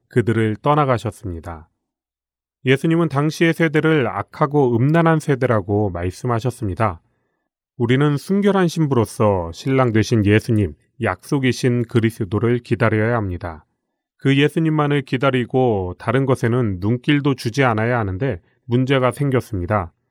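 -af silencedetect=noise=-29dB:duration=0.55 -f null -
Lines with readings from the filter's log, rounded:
silence_start: 1.58
silence_end: 2.65 | silence_duration: 1.08
silence_start: 6.94
silence_end: 7.80 | silence_duration: 0.85
silence_start: 13.56
silence_end: 14.25 | silence_duration: 0.69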